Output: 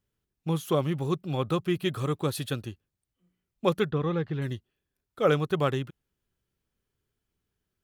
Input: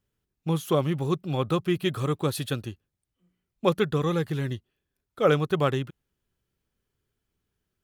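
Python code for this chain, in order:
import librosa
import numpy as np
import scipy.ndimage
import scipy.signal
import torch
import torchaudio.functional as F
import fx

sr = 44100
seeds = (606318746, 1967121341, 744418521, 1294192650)

y = fx.air_absorb(x, sr, metres=250.0, at=(3.9, 4.42))
y = y * librosa.db_to_amplitude(-2.0)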